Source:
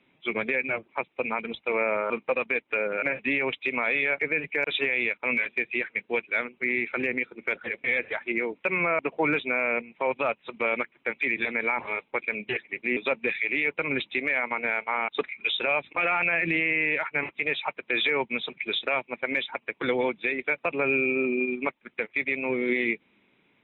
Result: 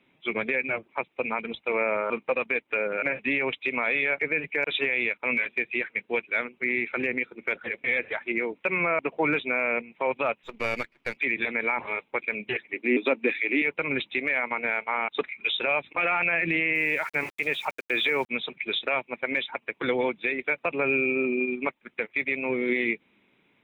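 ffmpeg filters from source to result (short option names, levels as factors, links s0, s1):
-filter_complex "[0:a]asettb=1/sr,asplit=3[s0][s1][s2];[s0]atrim=end=10.434[s3];[s1]atrim=start=10.43:end=11.17,asetpts=PTS-STARTPTS,afade=t=in:d=0.004:c=qsin,afade=t=out:st=0.736:d=0.004:c=qsin,aeval=exprs='if(lt(val(0),0),0.447*val(0),val(0))':c=same[s4];[s2]atrim=start=11.166[s5];[s3][s4]acrossfade=d=0.004:c1=hsin:c2=qsin[s6];[s6][s5]acrossfade=d=0.004:c1=qsin:c2=hsin,asettb=1/sr,asplit=3[s7][s8][s9];[s7]atrim=end=12.734[s10];[s8]atrim=start=12.73:end=13.62,asetpts=PTS-STARTPTS,afade=t=in:d=0.004:c=qsin,afade=t=out:st=0.886:d=0.004:c=qsin,highpass=f=280:t=q:w=3[s11];[s9]atrim=start=13.616[s12];[s10][s11]acrossfade=d=0.004:c1=hsin:c2=qsin[s13];[s13][s12]acrossfade=d=0.004:c1=qsin:c2=hsin,asettb=1/sr,asplit=3[s14][s15][s16];[s14]atrim=end=16.754[s17];[s15]atrim=start=16.75:end=18.29,asetpts=PTS-STARTPTS,afade=t=in:d=0.004:c=qsin,afade=t=out:st=1.536:d=0.004:c=qsin,aeval=exprs='val(0)*gte(abs(val(0)),0.00668)':c=same[s18];[s16]atrim=start=18.286[s19];[s17][s18]acrossfade=d=0.004:c1=hsin:c2=qsin[s20];[s20][s19]acrossfade=d=0.004:c1=qsin:c2=hsin"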